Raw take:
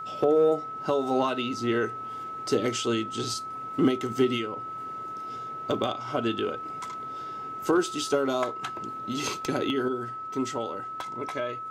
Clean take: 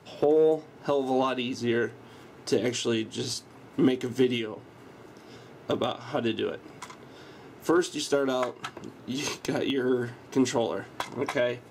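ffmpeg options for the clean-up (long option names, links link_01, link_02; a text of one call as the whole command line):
ffmpeg -i in.wav -af "bandreject=frequency=1300:width=30,asetnsamples=nb_out_samples=441:pad=0,asendcmd='9.88 volume volume 6dB',volume=0dB" out.wav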